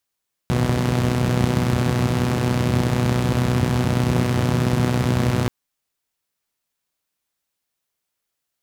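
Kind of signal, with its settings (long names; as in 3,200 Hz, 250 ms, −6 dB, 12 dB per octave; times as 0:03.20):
pulse-train model of a four-cylinder engine, steady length 4.98 s, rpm 3,700, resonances 99/150 Hz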